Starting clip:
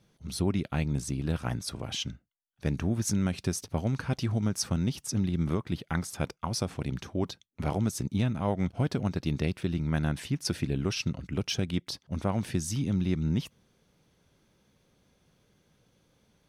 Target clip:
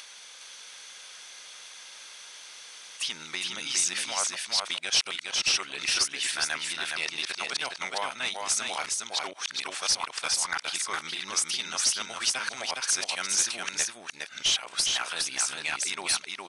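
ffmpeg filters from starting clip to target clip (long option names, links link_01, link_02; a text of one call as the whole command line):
ffmpeg -i in.wav -filter_complex "[0:a]areverse,highpass=820,tiltshelf=frequency=1100:gain=-9,asplit=2[link_01][link_02];[link_02]acompressor=mode=upward:threshold=-34dB:ratio=2.5,volume=2dB[link_03];[link_01][link_03]amix=inputs=2:normalize=0,asoftclip=type=tanh:threshold=-19.5dB,aecho=1:1:412:0.668,aresample=22050,aresample=44100" out.wav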